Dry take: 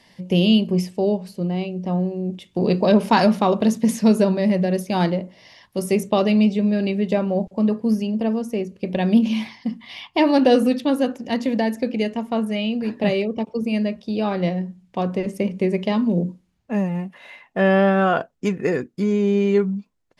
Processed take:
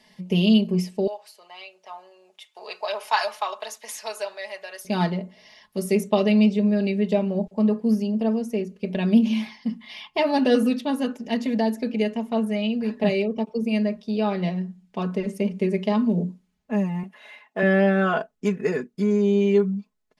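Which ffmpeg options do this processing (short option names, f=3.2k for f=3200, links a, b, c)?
-filter_complex "[0:a]asettb=1/sr,asplit=3[a][b][c];[a]atrim=end=1.074[d];[b]atrim=start=1.07:end=4.85,asetpts=PTS-STARTPTS,afade=t=in:d=0.004:c=qsin,afade=t=out:st=3.776:d=0.004:c=qsin,highpass=f=730:w=0.5412,highpass=f=730:w=1.3066[e];[c]atrim=start=4.846[f];[d][e]acrossfade=d=0.004:c1=hsin:c2=qsin[g];[g][f]acrossfade=d=0.004:c1=qsin:c2=hsin,asettb=1/sr,asplit=3[h][i][j];[h]atrim=end=17.034[k];[i]atrim=start=17.03:end=17.63,asetpts=PTS-STARTPTS,afade=t=in:d=0.004:c=qsin,afade=t=out:st=0.596:d=0.004:c=qsin,highpass=250[l];[j]atrim=start=17.626[m];[k][l]acrossfade=d=0.004:c1=hsin:c2=qsin[n];[n][m]acrossfade=d=0.004:c1=qsin:c2=hsin,lowshelf=f=200:g=-3.5,aecho=1:1:4.7:0.79,volume=-4.5dB"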